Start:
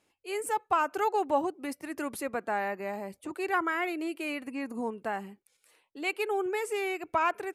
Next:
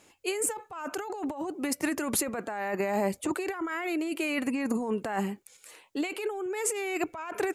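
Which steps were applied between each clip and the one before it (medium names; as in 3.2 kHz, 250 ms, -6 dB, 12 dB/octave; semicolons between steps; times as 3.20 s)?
peaking EQ 7 kHz +7 dB 0.3 oct; compressor with a negative ratio -38 dBFS, ratio -1; trim +6.5 dB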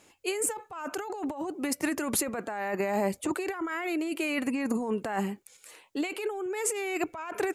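no audible change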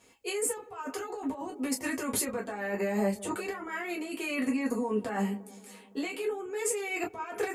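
feedback echo behind a low-pass 171 ms, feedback 64%, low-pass 940 Hz, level -18.5 dB; reverberation, pre-delay 3 ms, DRR -3.5 dB; trim -6.5 dB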